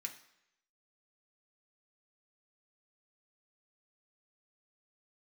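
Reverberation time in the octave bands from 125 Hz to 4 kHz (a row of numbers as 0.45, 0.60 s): 0.70, 0.70, 0.80, 0.80, 0.85, 0.80 s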